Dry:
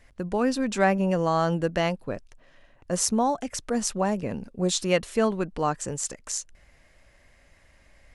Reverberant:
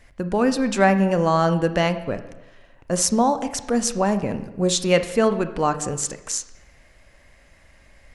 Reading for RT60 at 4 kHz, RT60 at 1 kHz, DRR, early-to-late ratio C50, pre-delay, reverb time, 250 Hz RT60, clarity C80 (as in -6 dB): 0.85 s, 0.95 s, 10.0 dB, 11.5 dB, 25 ms, 1.0 s, 1.0 s, 14.0 dB